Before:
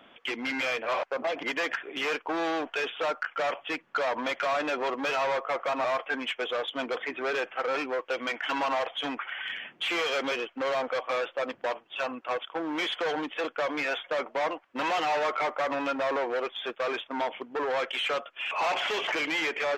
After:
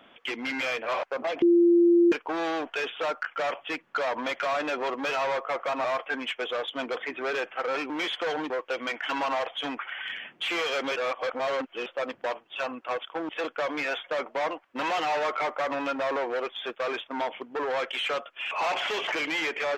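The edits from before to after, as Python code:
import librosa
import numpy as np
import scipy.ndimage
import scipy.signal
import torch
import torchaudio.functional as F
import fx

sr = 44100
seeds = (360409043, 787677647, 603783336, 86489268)

y = fx.edit(x, sr, fx.bleep(start_s=1.42, length_s=0.7, hz=344.0, db=-15.5),
    fx.reverse_span(start_s=10.36, length_s=0.9),
    fx.move(start_s=12.69, length_s=0.6, to_s=7.9), tone=tone)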